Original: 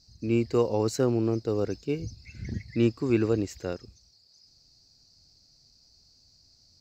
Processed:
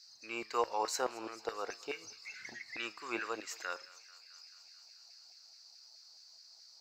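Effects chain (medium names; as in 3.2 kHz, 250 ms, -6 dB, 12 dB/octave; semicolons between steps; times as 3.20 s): in parallel at +2 dB: compression, threshold -34 dBFS, peak gain reduction 15.5 dB; on the sum: thinning echo 219 ms, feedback 80%, high-pass 840 Hz, level -20 dB; LFO high-pass saw down 4.7 Hz 730–1800 Hz; flange 1.2 Hz, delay 8.3 ms, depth 1.1 ms, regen +85%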